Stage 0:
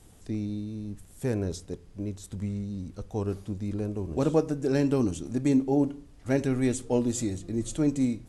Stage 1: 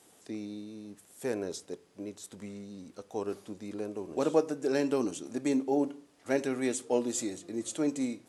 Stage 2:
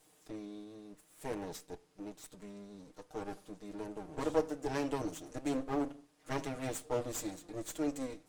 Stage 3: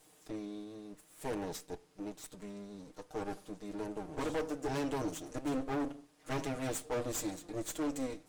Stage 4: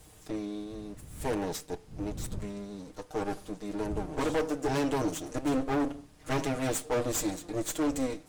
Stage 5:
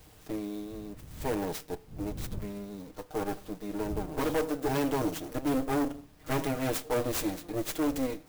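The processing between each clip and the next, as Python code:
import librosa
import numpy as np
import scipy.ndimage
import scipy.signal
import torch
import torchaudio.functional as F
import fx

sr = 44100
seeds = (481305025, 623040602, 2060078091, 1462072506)

y1 = scipy.signal.sosfilt(scipy.signal.butter(2, 350.0, 'highpass', fs=sr, output='sos'), x)
y2 = fx.lower_of_two(y1, sr, delay_ms=6.5)
y2 = F.gain(torch.from_numpy(y2), -4.5).numpy()
y3 = np.clip(10.0 ** (34.0 / 20.0) * y2, -1.0, 1.0) / 10.0 ** (34.0 / 20.0)
y3 = F.gain(torch.from_numpy(y3), 3.0).numpy()
y4 = fx.dmg_wind(y3, sr, seeds[0], corner_hz=120.0, level_db=-53.0)
y4 = F.gain(torch.from_numpy(y4), 6.5).numpy()
y5 = fx.clock_jitter(y4, sr, seeds[1], jitter_ms=0.034)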